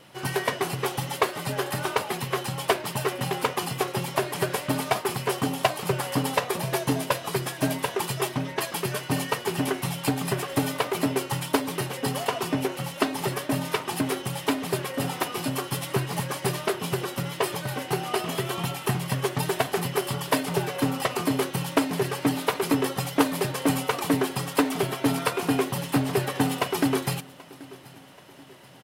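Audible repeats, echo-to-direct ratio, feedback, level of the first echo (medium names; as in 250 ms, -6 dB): 3, -21.0 dB, 50%, -22.0 dB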